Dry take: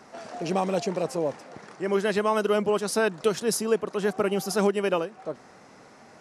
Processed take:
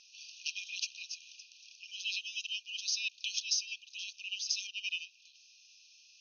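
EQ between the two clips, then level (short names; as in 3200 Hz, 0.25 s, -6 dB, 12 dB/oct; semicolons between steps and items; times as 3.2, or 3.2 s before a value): brick-wall FIR band-pass 2400–6600 Hz; +3.0 dB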